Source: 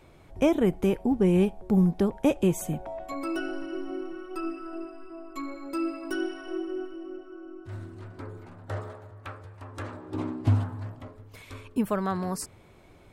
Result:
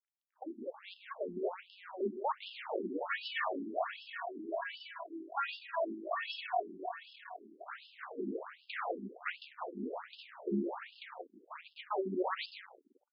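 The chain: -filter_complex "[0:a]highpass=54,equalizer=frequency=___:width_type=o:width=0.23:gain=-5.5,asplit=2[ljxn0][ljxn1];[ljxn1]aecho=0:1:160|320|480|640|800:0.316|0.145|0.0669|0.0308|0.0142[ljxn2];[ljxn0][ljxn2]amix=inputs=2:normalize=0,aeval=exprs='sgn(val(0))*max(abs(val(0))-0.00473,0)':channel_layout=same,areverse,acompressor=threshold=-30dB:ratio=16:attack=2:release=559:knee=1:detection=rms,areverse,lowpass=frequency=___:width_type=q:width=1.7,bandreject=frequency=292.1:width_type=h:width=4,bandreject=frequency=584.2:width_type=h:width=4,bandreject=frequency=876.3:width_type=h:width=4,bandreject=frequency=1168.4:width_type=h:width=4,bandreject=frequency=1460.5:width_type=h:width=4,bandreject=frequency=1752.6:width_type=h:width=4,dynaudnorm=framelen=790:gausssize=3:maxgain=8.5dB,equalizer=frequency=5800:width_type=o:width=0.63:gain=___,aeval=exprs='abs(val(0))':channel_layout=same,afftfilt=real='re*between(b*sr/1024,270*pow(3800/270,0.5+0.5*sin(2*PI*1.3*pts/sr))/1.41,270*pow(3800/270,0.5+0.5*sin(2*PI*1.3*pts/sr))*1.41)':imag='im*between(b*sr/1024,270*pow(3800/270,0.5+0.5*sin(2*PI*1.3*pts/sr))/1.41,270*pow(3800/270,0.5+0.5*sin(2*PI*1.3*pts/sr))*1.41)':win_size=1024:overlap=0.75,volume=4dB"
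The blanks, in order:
440, 8000, -5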